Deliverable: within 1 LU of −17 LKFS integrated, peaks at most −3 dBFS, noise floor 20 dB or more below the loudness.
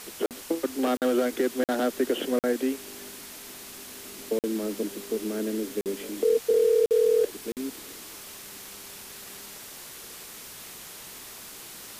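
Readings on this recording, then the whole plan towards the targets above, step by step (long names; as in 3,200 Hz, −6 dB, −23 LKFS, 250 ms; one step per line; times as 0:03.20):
number of dropouts 8; longest dropout 48 ms; background noise floor −43 dBFS; target noise floor −47 dBFS; integrated loudness −27.0 LKFS; sample peak −14.0 dBFS; target loudness −17.0 LKFS
→ repair the gap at 0:00.26/0:00.97/0:01.64/0:02.39/0:04.39/0:05.81/0:06.86/0:07.52, 48 ms
broadband denoise 6 dB, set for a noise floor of −43 dBFS
level +10 dB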